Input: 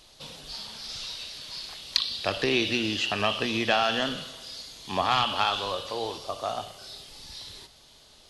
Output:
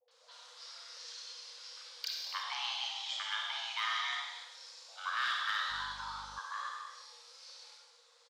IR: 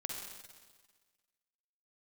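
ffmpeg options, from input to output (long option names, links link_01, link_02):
-filter_complex "[0:a]acrossover=split=430[link_01][link_02];[link_01]acompressor=threshold=-40dB:ratio=6[link_03];[link_03][link_02]amix=inputs=2:normalize=0,equalizer=frequency=160:width=1.7:gain=-12.5,acrossover=split=240|1200|1600[link_04][link_05][link_06][link_07];[link_04]acompressor=threshold=-58dB:ratio=6[link_08];[link_08][link_05][link_06][link_07]amix=inputs=4:normalize=0,acrossover=split=290|4200[link_09][link_10][link_11];[link_10]adelay=80[link_12];[link_11]adelay=110[link_13];[link_09][link_12][link_13]amix=inputs=3:normalize=0,afreqshift=460,lowpass=frequency=8100:width=0.5412,lowpass=frequency=8100:width=1.3066,volume=15.5dB,asoftclip=hard,volume=-15.5dB,asettb=1/sr,asplit=3[link_14][link_15][link_16];[link_14]atrim=end=3.074[link_17];[link_15]atrim=start=3.07:end=4.65,asetpts=PTS-STARTPTS,afade=type=in:duration=0.004:curve=qsin,afade=type=out:start_time=1.576:duration=0.004:curve=qsin,bandreject=frequency=1100:width=8.5[link_18];[link_16]atrim=start=4.646[link_19];[link_17][link_18]acrossfade=duration=0.004:curve1=hsin:curve2=qsin[link_20];[link_20][link_19]acrossfade=duration=0.004:curve1=qsin:curve2=hsin[link_21];[1:a]atrim=start_sample=2205,afade=type=out:start_time=0.4:duration=0.01,atrim=end_sample=18081[link_22];[link_21][link_22]afir=irnorm=-1:irlink=0,asettb=1/sr,asplit=3[link_23][link_24][link_25];[link_23]atrim=end=5.704[link_26];[link_24]atrim=start=5.7:end=6.39,asetpts=PTS-STARTPTS,afade=type=in:duration=0.004:curve=qsin,afade=type=out:start_time=0.686:duration=0.004:curve=qsin,aeval=exprs='val(0)+0.00355*(sin(2*PI*50*n/s)+sin(2*PI*2*50*n/s)/2+sin(2*PI*3*50*n/s)/3+sin(2*PI*4*50*n/s)/4+sin(2*PI*5*50*n/s)/5)':channel_layout=same[link_27];[link_25]atrim=start=6.386[link_28];[link_26][link_27]acrossfade=duration=0.004:curve1=hsin:curve2=qsin[link_29];[link_29][link_28]acrossfade=duration=0.004:curve1=qsin:curve2=hsin,volume=-8dB"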